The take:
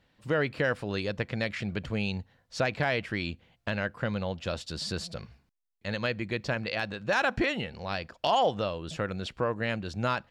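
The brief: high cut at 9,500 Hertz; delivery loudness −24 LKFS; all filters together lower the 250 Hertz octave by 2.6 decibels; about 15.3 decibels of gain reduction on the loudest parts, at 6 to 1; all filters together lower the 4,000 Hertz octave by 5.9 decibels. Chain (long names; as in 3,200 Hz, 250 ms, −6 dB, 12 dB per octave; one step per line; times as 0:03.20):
low-pass filter 9,500 Hz
parametric band 250 Hz −3.5 dB
parametric band 4,000 Hz −8 dB
downward compressor 6 to 1, threshold −40 dBFS
level +20.5 dB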